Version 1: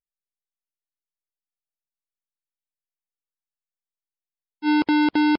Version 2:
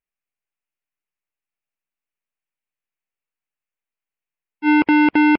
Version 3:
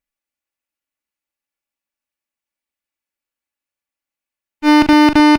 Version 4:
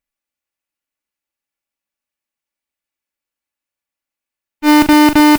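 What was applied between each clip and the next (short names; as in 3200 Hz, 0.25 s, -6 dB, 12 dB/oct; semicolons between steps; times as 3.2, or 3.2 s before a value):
resonant high shelf 3200 Hz -7.5 dB, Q 3; gain +4.5 dB
minimum comb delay 3.5 ms; doubler 41 ms -10 dB; gain +5 dB
modulation noise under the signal 18 dB; gain +1 dB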